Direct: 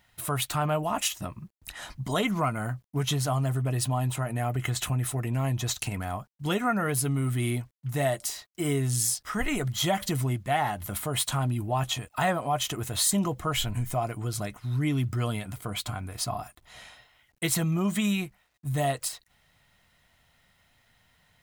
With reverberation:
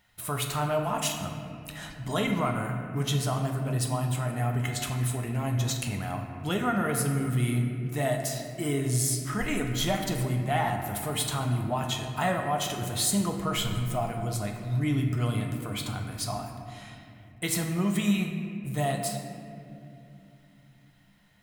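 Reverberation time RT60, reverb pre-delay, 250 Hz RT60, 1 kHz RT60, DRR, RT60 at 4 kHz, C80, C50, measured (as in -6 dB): 2.8 s, 5 ms, 4.3 s, 2.3 s, 2.5 dB, 1.4 s, 6.0 dB, 4.5 dB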